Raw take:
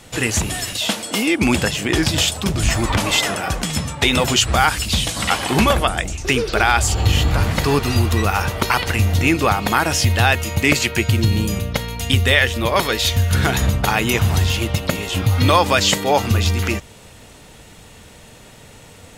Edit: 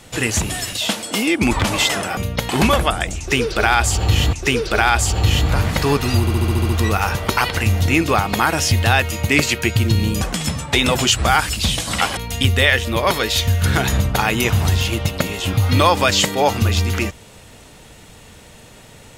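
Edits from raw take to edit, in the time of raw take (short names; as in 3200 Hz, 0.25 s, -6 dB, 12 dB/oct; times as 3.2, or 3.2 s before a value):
1.51–2.84 cut
3.5–5.46 swap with 11.54–11.86
6.15–7.3 loop, 2 plays
8.02 stutter 0.07 s, 8 plays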